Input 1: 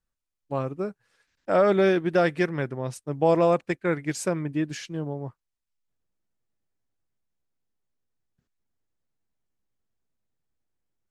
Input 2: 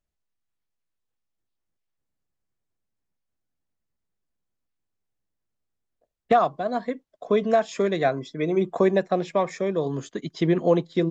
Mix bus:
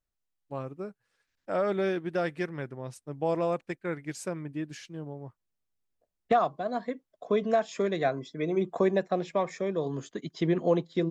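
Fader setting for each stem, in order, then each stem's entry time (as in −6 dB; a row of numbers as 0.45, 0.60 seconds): −8.0, −5.0 decibels; 0.00, 0.00 seconds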